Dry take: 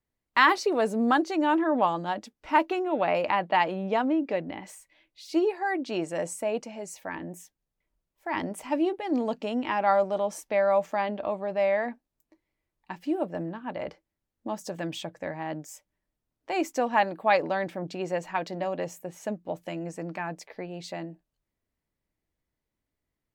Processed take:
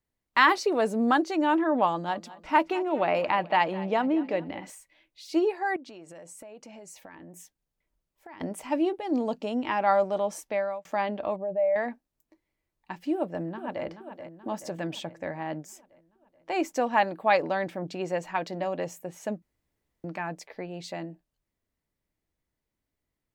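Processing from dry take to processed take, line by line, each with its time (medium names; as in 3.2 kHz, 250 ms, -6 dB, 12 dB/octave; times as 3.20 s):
1.87–4.70 s: feedback delay 212 ms, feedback 47%, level -18 dB
5.76–8.41 s: compression 12:1, threshold -42 dBFS
8.97–9.67 s: peaking EQ 1.9 kHz -5 dB 1.1 oct
10.44–10.85 s: fade out
11.36–11.76 s: spectral contrast enhancement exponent 1.7
13.14–13.85 s: echo throw 430 ms, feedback 60%, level -10 dB
14.61–16.72 s: treble shelf 5.5 kHz -3.5 dB
19.42–20.04 s: room tone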